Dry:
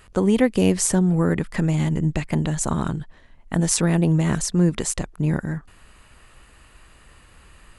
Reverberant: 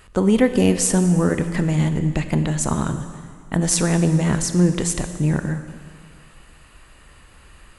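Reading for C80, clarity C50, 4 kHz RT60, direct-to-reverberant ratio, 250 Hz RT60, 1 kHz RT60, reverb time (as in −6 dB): 10.5 dB, 9.5 dB, 1.9 s, 8.5 dB, 1.9 s, 2.0 s, 2.0 s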